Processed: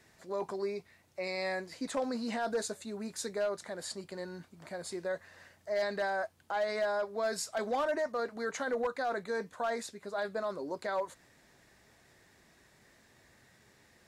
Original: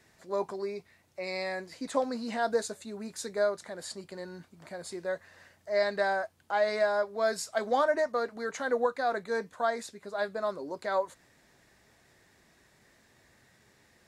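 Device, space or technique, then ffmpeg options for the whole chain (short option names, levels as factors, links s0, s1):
clipper into limiter: -af "asoftclip=type=hard:threshold=0.0891,alimiter=level_in=1.26:limit=0.0631:level=0:latency=1:release=13,volume=0.794"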